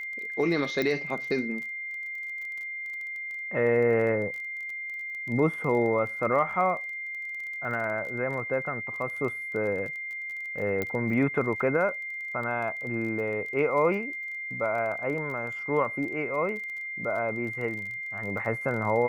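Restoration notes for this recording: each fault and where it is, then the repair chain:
crackle 23/s -36 dBFS
tone 2100 Hz -33 dBFS
0.82 pop -16 dBFS
10.82 pop -16 dBFS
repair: de-click; notch 2100 Hz, Q 30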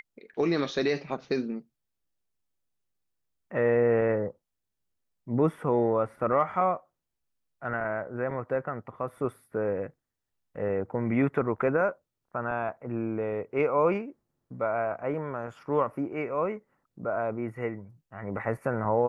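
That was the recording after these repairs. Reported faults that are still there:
none

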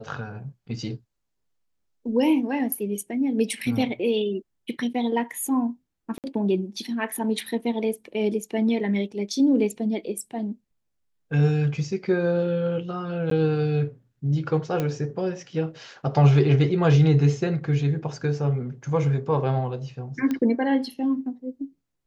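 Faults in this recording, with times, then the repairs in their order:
6.18–6.24 gap 58 ms
13.3–13.31 gap 13 ms
14.8 pop -13 dBFS
20.31 pop -15 dBFS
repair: de-click; interpolate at 6.18, 58 ms; interpolate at 13.3, 13 ms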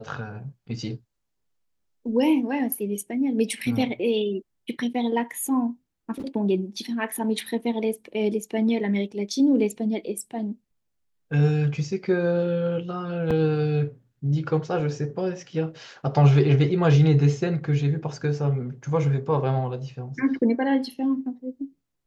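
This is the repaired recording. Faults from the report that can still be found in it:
none

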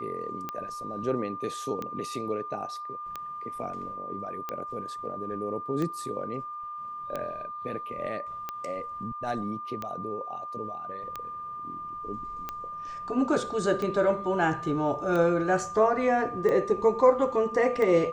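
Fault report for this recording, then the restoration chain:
tick 45 rpm -19 dBFS
tone 1200 Hz -35 dBFS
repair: de-click; notch 1200 Hz, Q 30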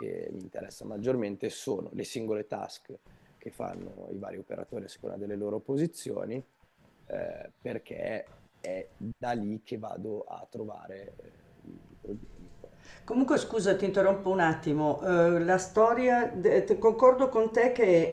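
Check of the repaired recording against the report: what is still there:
none

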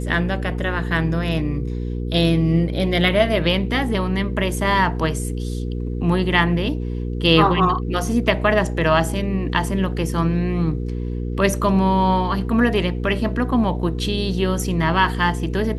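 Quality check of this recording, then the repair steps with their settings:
hum 60 Hz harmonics 8 -25 dBFS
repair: de-hum 60 Hz, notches 8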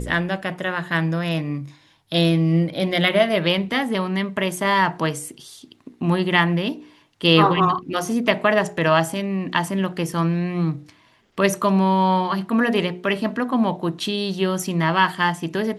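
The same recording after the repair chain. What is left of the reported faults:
none

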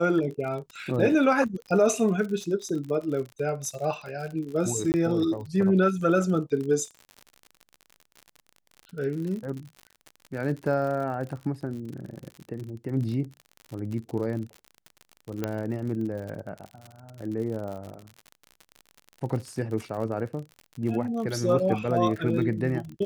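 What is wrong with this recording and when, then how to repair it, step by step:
crackle 58/s -34 dBFS
4.92–4.94 gap 19 ms
15.44 pop -14 dBFS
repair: de-click; interpolate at 4.92, 19 ms

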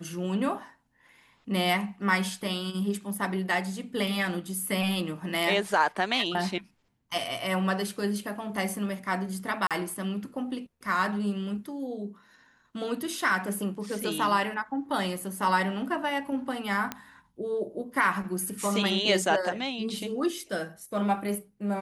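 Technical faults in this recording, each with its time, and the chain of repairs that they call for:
9.67–9.71 gap 37 ms
16.92 pop -15 dBFS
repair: de-click; interpolate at 9.67, 37 ms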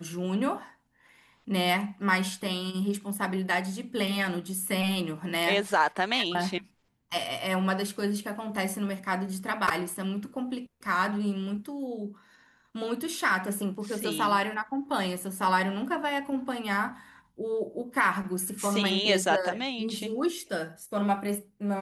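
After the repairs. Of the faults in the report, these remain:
none

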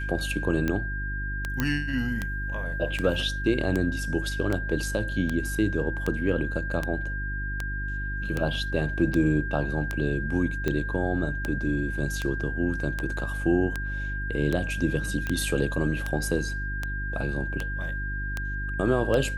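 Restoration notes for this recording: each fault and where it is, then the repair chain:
hum 50 Hz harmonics 7 -32 dBFS
tick 78 rpm -14 dBFS
tone 1600 Hz -33 dBFS
1.6 pop -11 dBFS
15.27 pop -17 dBFS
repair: de-click; notch 1600 Hz, Q 30; de-hum 50 Hz, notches 7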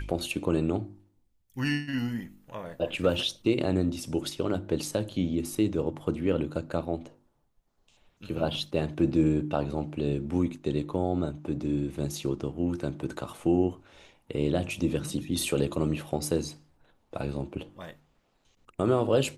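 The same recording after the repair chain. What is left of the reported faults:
none

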